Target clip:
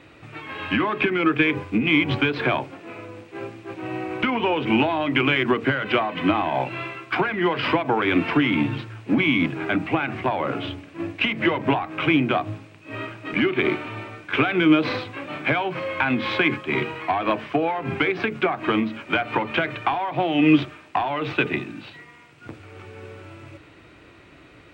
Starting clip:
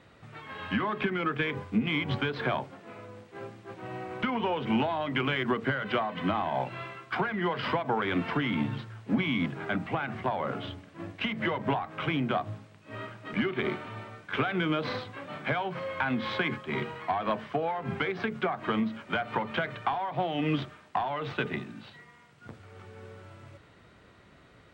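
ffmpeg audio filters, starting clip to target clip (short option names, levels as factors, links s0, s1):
-af "equalizer=f=200:t=o:w=0.33:g=-6,equalizer=f=315:t=o:w=0.33:g=10,equalizer=f=2500:t=o:w=0.33:g=9,volume=2"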